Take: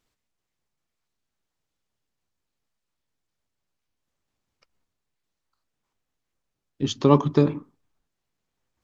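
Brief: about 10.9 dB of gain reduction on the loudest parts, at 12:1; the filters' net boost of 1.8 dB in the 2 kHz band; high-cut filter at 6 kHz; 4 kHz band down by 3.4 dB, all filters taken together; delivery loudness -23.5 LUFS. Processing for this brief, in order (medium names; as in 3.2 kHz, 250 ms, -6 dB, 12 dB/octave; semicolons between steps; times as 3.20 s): low-pass 6 kHz; peaking EQ 2 kHz +4 dB; peaking EQ 4 kHz -5.5 dB; compression 12:1, threshold -22 dBFS; trim +7.5 dB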